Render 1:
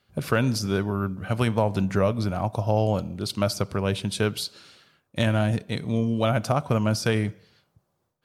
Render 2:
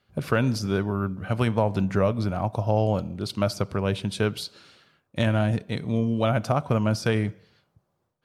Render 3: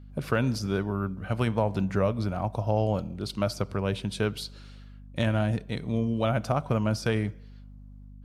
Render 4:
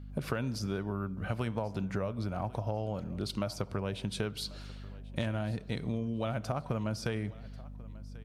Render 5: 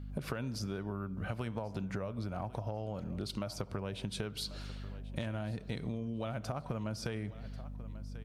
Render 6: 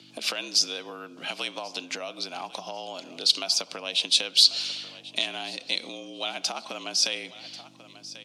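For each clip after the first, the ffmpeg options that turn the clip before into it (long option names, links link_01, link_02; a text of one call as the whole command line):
ffmpeg -i in.wav -af "highshelf=frequency=4600:gain=-7" out.wav
ffmpeg -i in.wav -af "aeval=exprs='val(0)+0.00794*(sin(2*PI*50*n/s)+sin(2*PI*2*50*n/s)/2+sin(2*PI*3*50*n/s)/3+sin(2*PI*4*50*n/s)/4+sin(2*PI*5*50*n/s)/5)':channel_layout=same,volume=-3dB" out.wav
ffmpeg -i in.wav -af "acompressor=threshold=-32dB:ratio=6,aecho=1:1:1090|2180:0.0891|0.0285,volume=1.5dB" out.wav
ffmpeg -i in.wav -af "acompressor=threshold=-37dB:ratio=3,volume=1.5dB" out.wav
ffmpeg -i in.wav -af "aexciter=amount=10:drive=3.7:freq=2400,afreqshift=74,highpass=540,lowpass=5000,volume=6dB" out.wav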